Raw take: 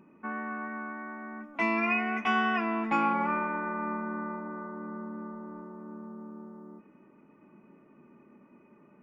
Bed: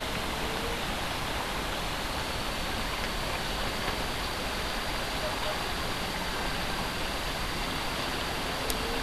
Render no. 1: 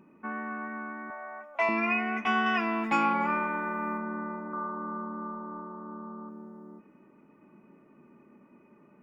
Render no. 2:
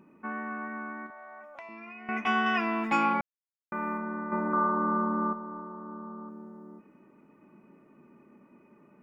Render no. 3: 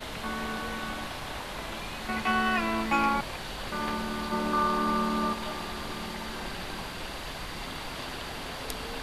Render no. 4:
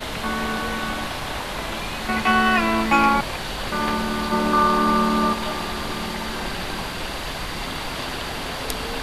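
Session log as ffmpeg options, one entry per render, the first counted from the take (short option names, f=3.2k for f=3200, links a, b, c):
-filter_complex "[0:a]asettb=1/sr,asplit=3[a][b][c];[a]atrim=end=1.104[d];[b]atrim=start=1.1:end=1.69,asetpts=PTS-STARTPTS,afade=t=in:d=0.004:c=qsin,afade=t=out:st=0.586:d=0.004:c=qsin,lowshelf=f=400:t=q:w=3:g=-13[e];[c]atrim=start=1.686[f];[d][e]acrossfade=d=0.004:c1=hsin:c2=qsin[g];[g][f]acrossfade=d=0.004:c1=qsin:c2=hsin,asettb=1/sr,asplit=3[h][i][j];[h]atrim=end=2.464[k];[i]atrim=start=2.46:end=3.98,asetpts=PTS-STARTPTS,afade=t=in:d=0.004:c=qsin,afade=t=out:st=1.516:d=0.004:c=qsin,aemphasis=mode=production:type=75kf[l];[j]atrim=start=3.976[m];[k][l]acrossfade=d=0.004:c1=hsin:c2=qsin[n];[n][m]acrossfade=d=0.004:c1=qsin:c2=hsin,asettb=1/sr,asplit=3[o][p][q];[o]atrim=end=4.534[r];[p]atrim=start=4.53:end=6.29,asetpts=PTS-STARTPTS,afade=t=in:d=0.004:c=qsin,afade=t=out:st=1.756:d=0.004:c=qsin,lowpass=f=1.2k:t=q:w=3[s];[q]atrim=start=6.286[t];[r][s]acrossfade=d=0.004:c1=hsin:c2=qsin[u];[u][t]acrossfade=d=0.004:c1=qsin:c2=hsin"
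-filter_complex "[0:a]asettb=1/sr,asplit=3[a][b][c];[a]atrim=end=1.064[d];[b]atrim=start=1.06:end=2.09,asetpts=PTS-STARTPTS,afade=t=in:d=0.004:c=qsin,afade=t=out:st=1.026:d=0.004:c=qsin,acompressor=threshold=-42dB:ratio=10:attack=3.2:release=140:knee=1:detection=peak[e];[c]atrim=start=2.086[f];[d][e]acrossfade=d=0.004:c1=hsin:c2=qsin[g];[g][f]acrossfade=d=0.004:c1=qsin:c2=hsin,asplit=5[h][i][j][k][l];[h]atrim=end=3.21,asetpts=PTS-STARTPTS,afade=t=out:st=3.206:d=0.004:c=hsin[m];[i]atrim=start=3.21:end=3.72,asetpts=PTS-STARTPTS,volume=0[n];[j]atrim=start=3.72:end=4.322,asetpts=PTS-STARTPTS,afade=t=in:d=0.004:c=hsin[o];[k]atrim=start=4.318:end=5.332,asetpts=PTS-STARTPTS,volume=8.5dB[p];[l]atrim=start=5.328[q];[m][n][o]concat=n=3:v=0:a=1[r];[r][p]acrossfade=d=0.004:c1=hsin:c2=hsin[s];[s][q]acrossfade=d=0.004:c1=hsin:c2=hsin"
-filter_complex "[1:a]volume=-5.5dB[a];[0:a][a]amix=inputs=2:normalize=0"
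-af "volume=8.5dB"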